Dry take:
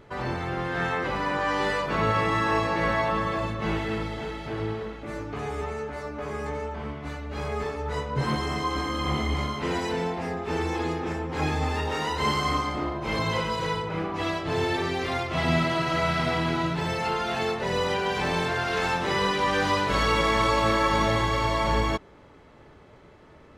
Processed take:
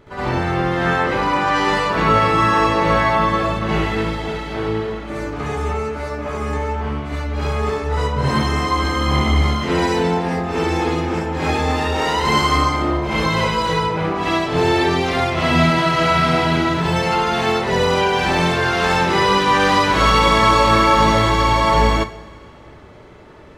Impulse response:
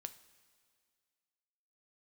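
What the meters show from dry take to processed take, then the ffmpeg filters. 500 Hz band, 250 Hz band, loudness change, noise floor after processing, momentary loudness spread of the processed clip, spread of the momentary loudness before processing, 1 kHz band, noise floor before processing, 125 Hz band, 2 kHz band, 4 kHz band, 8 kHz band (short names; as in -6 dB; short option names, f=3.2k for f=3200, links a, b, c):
+8.5 dB, +9.5 dB, +9.5 dB, -40 dBFS, 10 LU, 10 LU, +10.0 dB, -51 dBFS, +9.0 dB, +8.5 dB, +9.0 dB, +9.0 dB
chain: -filter_complex "[0:a]asplit=2[a][b];[1:a]atrim=start_sample=2205,adelay=69[c];[b][c]afir=irnorm=-1:irlink=0,volume=11dB[d];[a][d]amix=inputs=2:normalize=0,volume=1.5dB"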